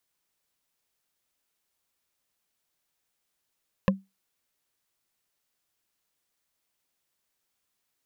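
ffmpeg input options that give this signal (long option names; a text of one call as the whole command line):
ffmpeg -f lavfi -i "aevalsrc='0.178*pow(10,-3*t/0.21)*sin(2*PI*193*t)+0.141*pow(10,-3*t/0.062)*sin(2*PI*532.1*t)+0.112*pow(10,-3*t/0.028)*sin(2*PI*1043*t)+0.0891*pow(10,-3*t/0.015)*sin(2*PI*1724.1*t)+0.0708*pow(10,-3*t/0.009)*sin(2*PI*2574.6*t)':duration=0.45:sample_rate=44100" out.wav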